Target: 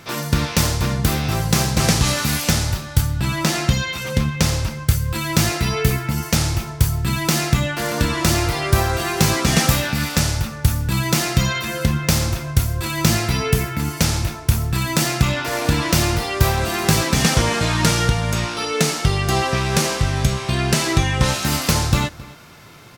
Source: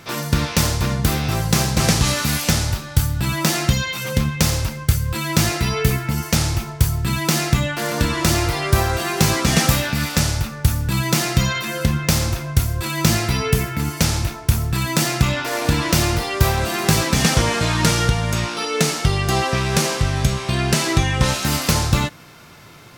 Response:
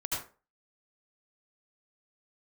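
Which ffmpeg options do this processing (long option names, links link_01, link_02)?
-filter_complex "[0:a]asettb=1/sr,asplit=3[link_01][link_02][link_03];[link_01]atrim=end=3.014[link_04];[link_02]atrim=start=3.01:end=4.88,asetpts=PTS-STARTPTS,afade=type=in:duration=0.004:curve=qsin,afade=type=out:start_time=1.866:duration=0.004:curve=qsin,highshelf=frequency=11000:gain=-9[link_05];[link_03]atrim=start=4.876[link_06];[link_04][link_05]acrossfade=duration=0.004:curve1=hsin:curve2=qsin[link_07];[link_07][link_06]acrossfade=duration=0.004:curve1=qsin:curve2=hsin,asplit=2[link_08][link_09];[link_09]adelay=268.2,volume=-20dB,highshelf=frequency=4000:gain=-6.04[link_10];[link_08][link_10]amix=inputs=2:normalize=0"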